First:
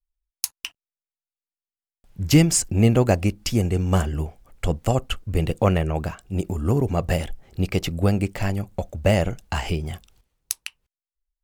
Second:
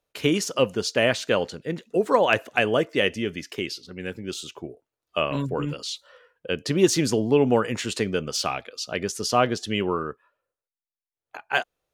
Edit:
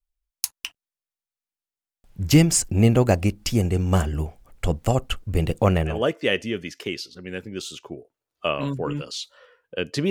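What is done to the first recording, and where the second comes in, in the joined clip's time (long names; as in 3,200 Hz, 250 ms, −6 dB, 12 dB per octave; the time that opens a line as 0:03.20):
first
0:05.95: continue with second from 0:02.67, crossfade 0.20 s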